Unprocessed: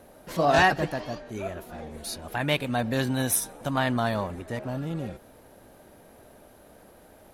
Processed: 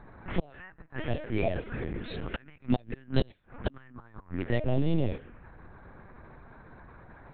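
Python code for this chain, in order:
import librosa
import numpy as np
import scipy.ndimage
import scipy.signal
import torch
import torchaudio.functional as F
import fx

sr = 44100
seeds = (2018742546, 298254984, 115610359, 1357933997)

y = fx.gate_flip(x, sr, shuts_db=-17.0, range_db=-32)
y = fx.env_phaser(y, sr, low_hz=500.0, high_hz=1400.0, full_db=-28.0)
y = fx.lpc_vocoder(y, sr, seeds[0], excitation='pitch_kept', order=10)
y = F.gain(torch.from_numpy(y), 7.5).numpy()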